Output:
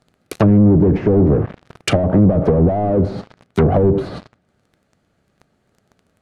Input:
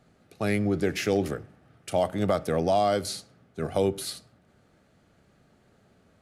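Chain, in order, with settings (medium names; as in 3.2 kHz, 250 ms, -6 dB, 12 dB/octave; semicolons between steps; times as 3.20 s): waveshaping leveller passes 5; low-pass that closes with the level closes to 370 Hz, closed at -15.5 dBFS; trim +7.5 dB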